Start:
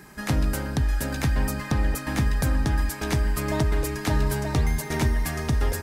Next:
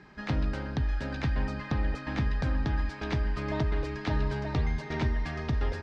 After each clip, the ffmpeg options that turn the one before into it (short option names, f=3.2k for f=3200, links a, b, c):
-af "lowpass=f=4.5k:w=0.5412,lowpass=f=4.5k:w=1.3066,volume=-5.5dB"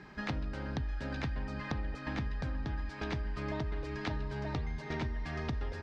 -af "acompressor=threshold=-35dB:ratio=6,volume=1.5dB"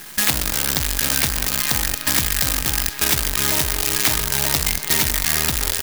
-af "acrusher=bits=7:dc=4:mix=0:aa=0.000001,crystalizer=i=9.5:c=0,volume=7.5dB"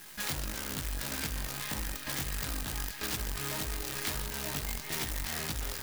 -af "flanger=delay=18.5:depth=3.3:speed=1.6,aeval=exprs='(mod(4.22*val(0)+1,2)-1)/4.22':c=same,volume=-8.5dB"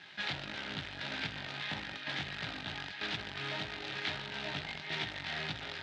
-af "highpass=f=110:w=0.5412,highpass=f=110:w=1.3066,equalizer=f=130:t=q:w=4:g=-7,equalizer=f=230:t=q:w=4:g=-9,equalizer=f=330:t=q:w=4:g=-5,equalizer=f=480:t=q:w=4:g=-9,equalizer=f=1.1k:t=q:w=4:g=-9,equalizer=f=3.7k:t=q:w=4:g=4,lowpass=f=3.7k:w=0.5412,lowpass=f=3.7k:w=1.3066,volume=2.5dB"